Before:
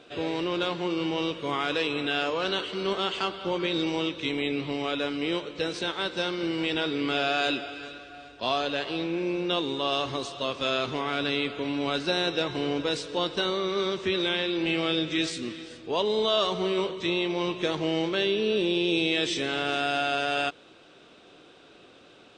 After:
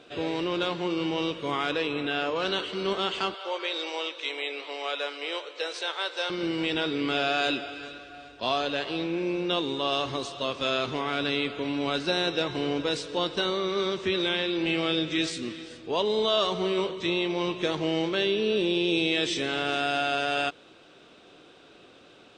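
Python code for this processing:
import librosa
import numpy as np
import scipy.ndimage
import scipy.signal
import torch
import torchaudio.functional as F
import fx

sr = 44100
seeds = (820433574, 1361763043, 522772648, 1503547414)

y = fx.high_shelf(x, sr, hz=4200.0, db=-8.0, at=(1.71, 2.36))
y = fx.highpass(y, sr, hz=480.0, slope=24, at=(3.34, 6.3))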